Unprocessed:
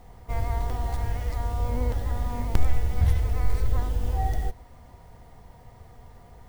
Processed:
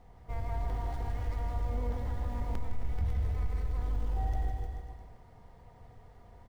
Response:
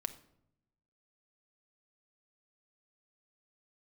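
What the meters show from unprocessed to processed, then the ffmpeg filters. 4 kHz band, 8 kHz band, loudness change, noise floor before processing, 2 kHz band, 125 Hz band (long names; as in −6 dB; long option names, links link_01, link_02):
−11.0 dB, can't be measured, −7.5 dB, −50 dBFS, −9.0 dB, −7.5 dB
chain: -filter_complex "[0:a]lowpass=frequency=3700:poles=1,acompressor=threshold=-20dB:ratio=6,asplit=2[link_01][link_02];[link_02]aecho=0:1:160|304|433.6|550.2|655.2:0.631|0.398|0.251|0.158|0.1[link_03];[link_01][link_03]amix=inputs=2:normalize=0,asoftclip=type=tanh:threshold=-14dB,volume=-7.5dB"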